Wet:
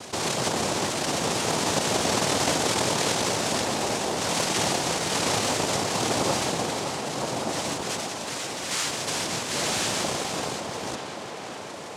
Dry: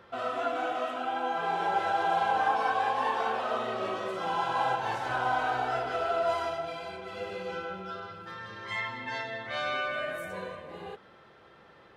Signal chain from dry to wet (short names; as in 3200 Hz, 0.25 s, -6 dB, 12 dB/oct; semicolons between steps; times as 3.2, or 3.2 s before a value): in parallel at -6 dB: bit-crush 6-bit; on the sum: noise vocoder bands 2; on a send: tape echo 0.564 s, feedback 63%, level -12.5 dB, low-pass 3800 Hz; on the sum: fast leveller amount 50%; gain -3 dB